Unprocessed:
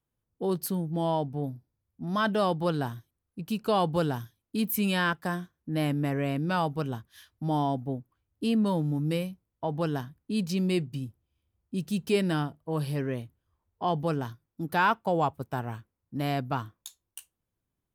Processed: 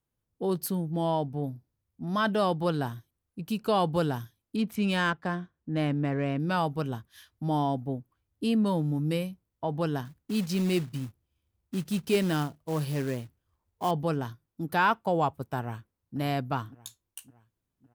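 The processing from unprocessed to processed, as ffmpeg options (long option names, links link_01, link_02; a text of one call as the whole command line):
ffmpeg -i in.wav -filter_complex "[0:a]asettb=1/sr,asplit=3[link_01][link_02][link_03];[link_01]atrim=end=4.564[link_04];[link_02]atrim=start=4.56:end=6.4,asetpts=PTS-STARTPTS,afade=type=in:duration=0.004:curve=qsin,afade=type=out:start_time=1.836:duration=0.004:curve=qsin,adynamicsmooth=sensitivity=4:basefreq=3400[link_05];[link_03]atrim=start=6.396[link_06];[link_04][link_05]acrossfade=duration=0.004:curve1=hsin:curve2=qsin[link_07];[link_07][link_06]acrossfade=duration=0.004:curve1=qsin:curve2=hsin,asettb=1/sr,asplit=3[link_08][link_09][link_10];[link_08]atrim=end=10.054[link_11];[link_09]atrim=start=10.05:end=13.91,asetpts=PTS-STARTPTS,afade=type=in:duration=0.004:curve=qsin,afade=type=out:start_time=3.856:duration=0.004:curve=qsin,acrusher=bits=4:mode=log:mix=0:aa=0.000001[link_12];[link_10]atrim=start=13.906[link_13];[link_11][link_12]acrossfade=duration=0.004:curve1=hsin:curve2=qsin[link_14];[link_14][link_13]acrossfade=duration=0.004:curve1=qsin:curve2=hsin,asplit=2[link_15][link_16];[link_16]afade=type=in:start_time=15.6:duration=0.01,afade=type=out:start_time=16.18:duration=0.01,aecho=0:1:560|1120|1680|2240|2800:0.158489|0.0871691|0.047943|0.0263687|0.0145028[link_17];[link_15][link_17]amix=inputs=2:normalize=0" out.wav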